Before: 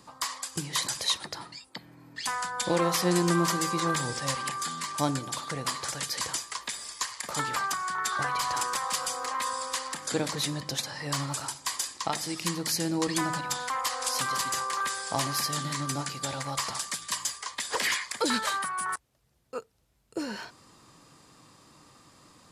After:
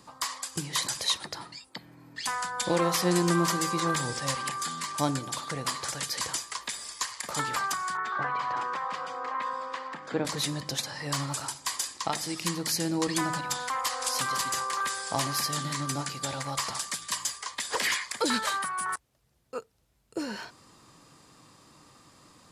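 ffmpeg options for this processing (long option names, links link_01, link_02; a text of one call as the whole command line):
ffmpeg -i in.wav -filter_complex "[0:a]asettb=1/sr,asplit=3[link_01][link_02][link_03];[link_01]atrim=end=7.974[link_04];[link_02]atrim=start=7.97:end=10.25,asetpts=PTS-STARTPTS,afade=type=in:duration=0.004:curve=qsin,afade=type=out:start_time=2.276:duration=0.004:curve=qsin,highpass=130,lowpass=2100[link_05];[link_03]atrim=start=10.246[link_06];[link_04][link_05]acrossfade=duration=0.004:curve1=hsin:curve2=qsin[link_07];[link_07][link_06]acrossfade=duration=0.004:curve1=qsin:curve2=hsin" out.wav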